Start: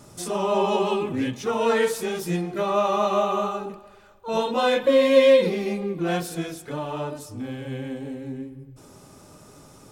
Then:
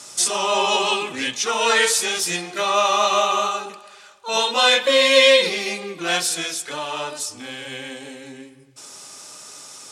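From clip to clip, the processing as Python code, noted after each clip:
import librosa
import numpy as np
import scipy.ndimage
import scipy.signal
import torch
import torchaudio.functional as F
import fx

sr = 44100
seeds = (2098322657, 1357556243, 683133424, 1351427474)

y = fx.weighting(x, sr, curve='ITU-R 468')
y = y * librosa.db_to_amplitude(5.0)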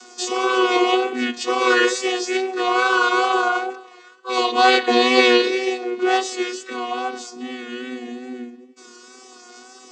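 y = fx.chord_vocoder(x, sr, chord='bare fifth', root=59)
y = y + 0.38 * np.pad(y, (int(2.7 * sr / 1000.0), 0))[:len(y)]
y = fx.wow_flutter(y, sr, seeds[0], rate_hz=2.1, depth_cents=44.0)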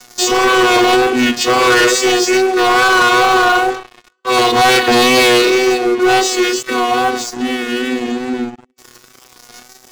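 y = fx.leveller(x, sr, passes=5)
y = y * librosa.db_to_amplitude(-5.0)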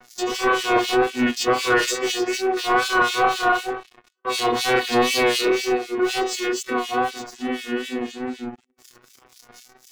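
y = fx.harmonic_tremolo(x, sr, hz=4.0, depth_pct=100, crossover_hz=2400.0)
y = y * librosa.db_to_amplitude(-4.5)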